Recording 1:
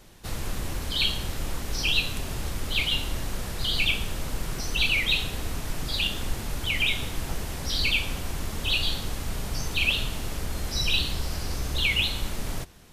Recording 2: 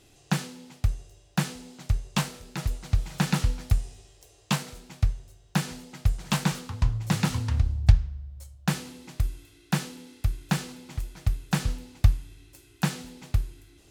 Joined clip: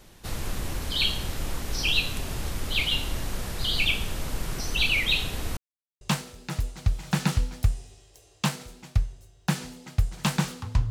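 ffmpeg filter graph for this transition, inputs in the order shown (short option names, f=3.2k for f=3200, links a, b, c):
-filter_complex "[0:a]apad=whole_dur=10.9,atrim=end=10.9,asplit=2[a][b];[a]atrim=end=5.57,asetpts=PTS-STARTPTS,afade=t=out:st=5.566:d=0.004:c=hsin[c];[b]atrim=start=5.57:end=6.01,asetpts=PTS-STARTPTS,volume=0[d];[1:a]atrim=start=2.08:end=6.97,asetpts=PTS-STARTPTS,afade=t=in:d=0.004:c=hsin[e];[c][d][e]concat=n=3:v=0:a=1"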